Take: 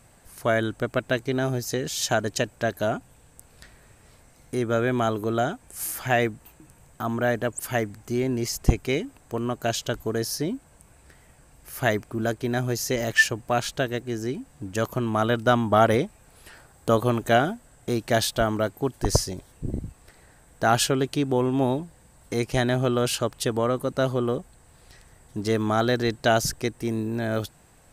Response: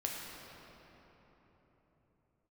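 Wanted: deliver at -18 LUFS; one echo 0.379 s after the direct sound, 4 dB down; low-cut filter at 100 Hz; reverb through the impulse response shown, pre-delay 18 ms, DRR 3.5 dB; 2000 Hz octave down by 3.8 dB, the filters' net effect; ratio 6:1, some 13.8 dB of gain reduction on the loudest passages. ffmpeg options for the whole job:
-filter_complex "[0:a]highpass=100,equalizer=f=2k:t=o:g=-5,acompressor=threshold=-30dB:ratio=6,aecho=1:1:379:0.631,asplit=2[a][b];[1:a]atrim=start_sample=2205,adelay=18[c];[b][c]afir=irnorm=-1:irlink=0,volume=-6dB[d];[a][d]amix=inputs=2:normalize=0,volume=14.5dB"

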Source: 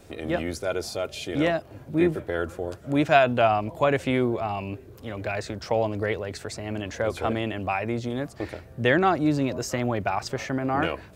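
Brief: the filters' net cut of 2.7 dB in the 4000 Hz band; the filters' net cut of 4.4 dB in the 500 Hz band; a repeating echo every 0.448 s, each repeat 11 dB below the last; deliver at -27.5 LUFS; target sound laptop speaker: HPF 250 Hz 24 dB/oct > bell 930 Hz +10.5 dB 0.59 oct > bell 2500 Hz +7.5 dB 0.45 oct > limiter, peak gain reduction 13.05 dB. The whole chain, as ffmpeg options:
-af "highpass=f=250:w=0.5412,highpass=f=250:w=1.3066,equalizer=f=500:t=o:g=-9,equalizer=f=930:t=o:w=0.59:g=10.5,equalizer=f=2.5k:t=o:w=0.45:g=7.5,equalizer=f=4k:t=o:g=-7.5,aecho=1:1:448|896|1344:0.282|0.0789|0.0221,volume=3.5dB,alimiter=limit=-15.5dB:level=0:latency=1"

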